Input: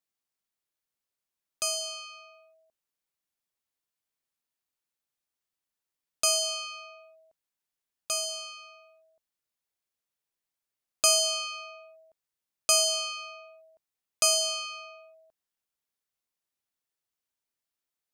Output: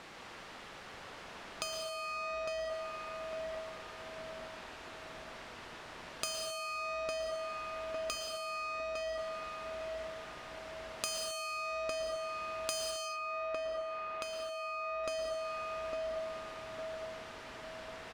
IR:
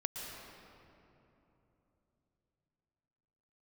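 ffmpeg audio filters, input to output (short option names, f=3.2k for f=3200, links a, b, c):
-filter_complex "[0:a]aeval=exprs='val(0)+0.5*0.0106*sgn(val(0))':c=same,adynamicsmooth=sensitivity=3.5:basefreq=2.1k,lowshelf=f=400:g=-6.5,asplit=2[a][b];[b]adelay=855,lowpass=f=860:p=1,volume=-3dB,asplit=2[c][d];[d]adelay=855,lowpass=f=860:p=1,volume=0.54,asplit=2[e][f];[f]adelay=855,lowpass=f=860:p=1,volume=0.54,asplit=2[g][h];[h]adelay=855,lowpass=f=860:p=1,volume=0.54,asplit=2[i][j];[j]adelay=855,lowpass=f=860:p=1,volume=0.54,asplit=2[k][l];[l]adelay=855,lowpass=f=860:p=1,volume=0.54,asplit=2[m][n];[n]adelay=855,lowpass=f=860:p=1,volume=0.54[o];[a][c][e][g][i][k][m][o]amix=inputs=8:normalize=0,acompressor=threshold=-45dB:ratio=10,asettb=1/sr,asplit=3[p][q][r];[p]atrim=end=12.914[s];[q]atrim=start=12.91:end=15.04,asetpts=PTS-STARTPTS,afade=t=in:d=0.004:c=qsin,afade=t=out:st=2.126:d=0.004:c=qsin,bass=f=250:g=-4,treble=f=4k:g=-14[t];[r]atrim=start=15.036[u];[s][t]acrossfade=d=0.004:c1=hsin:c2=qsin[v];[v][u]acrossfade=d=0.004:c1=qsin:c2=hsin[w];[1:a]atrim=start_sample=2205,afade=t=out:st=0.32:d=0.01,atrim=end_sample=14553[x];[w][x]afir=irnorm=-1:irlink=0,volume=9.5dB"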